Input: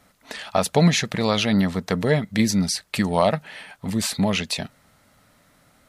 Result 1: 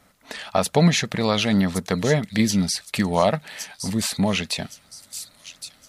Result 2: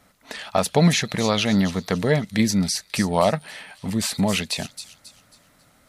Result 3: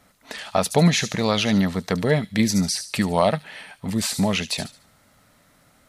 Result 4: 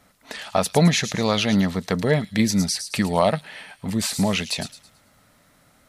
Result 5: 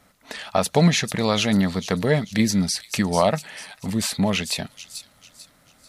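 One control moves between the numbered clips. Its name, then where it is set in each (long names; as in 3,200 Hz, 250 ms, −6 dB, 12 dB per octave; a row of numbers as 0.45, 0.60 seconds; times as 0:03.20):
delay with a high-pass on its return, delay time: 1,116, 271, 73, 109, 443 milliseconds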